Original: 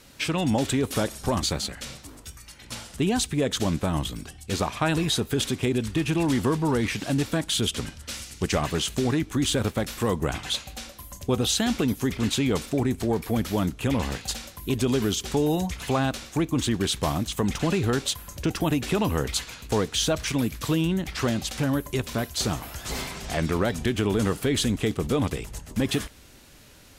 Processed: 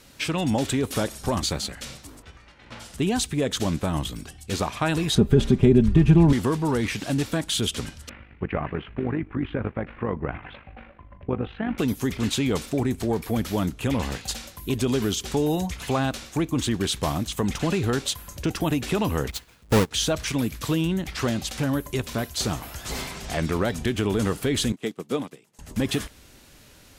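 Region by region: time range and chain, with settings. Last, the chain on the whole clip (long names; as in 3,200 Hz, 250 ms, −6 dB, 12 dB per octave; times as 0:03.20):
0:02.21–0:02.79: spectral envelope flattened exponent 0.6 + low-pass filter 2,400 Hz
0:05.15–0:06.33: spectral tilt −4 dB per octave + comb filter 5 ms, depth 52%
0:08.09–0:11.78: Butterworth low-pass 2,400 Hz + amplitude modulation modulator 50 Hz, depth 45%
0:19.30–0:19.91: each half-wave held at its own peak + low-shelf EQ 440 Hz +3 dB + expander for the loud parts 2.5 to 1, over −28 dBFS
0:24.72–0:25.59: high-pass filter 160 Hz 24 dB per octave + expander for the loud parts 2.5 to 1, over −35 dBFS
whole clip: no processing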